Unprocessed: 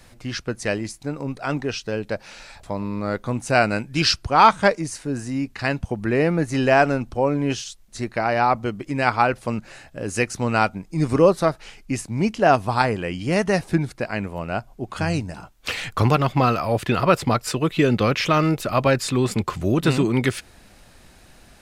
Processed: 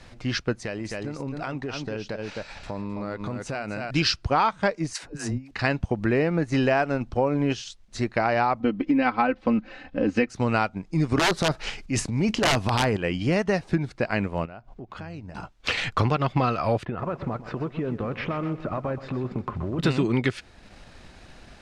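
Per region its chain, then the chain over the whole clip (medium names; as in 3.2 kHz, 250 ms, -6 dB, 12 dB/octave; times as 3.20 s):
0.53–3.91 s: delay 261 ms -7 dB + compression 8:1, threshold -30 dBFS
4.93–5.51 s: treble shelf 11 kHz +8.5 dB + compressor with a negative ratio -32 dBFS, ratio -0.5 + phase dispersion lows, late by 108 ms, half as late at 460 Hz
8.60–10.29 s: Chebyshev low-pass 3.2 kHz + peaking EQ 280 Hz +7.5 dB 1.2 oct + comb 3.9 ms, depth 76%
11.17–12.97 s: integer overflow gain 10 dB + transient shaper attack -7 dB, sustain +8 dB + treble shelf 5.2 kHz +4 dB
14.45–15.35 s: low-pass 3.1 kHz 6 dB/octave + compression 5:1, threshold -39 dBFS
16.85–19.79 s: low-pass 1.3 kHz + compression 8:1, threshold -28 dBFS + bit-crushed delay 126 ms, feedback 55%, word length 9-bit, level -11 dB
whole clip: low-pass 5.4 kHz 12 dB/octave; transient shaper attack -1 dB, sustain -5 dB; compression 6:1, threshold -22 dBFS; trim +3 dB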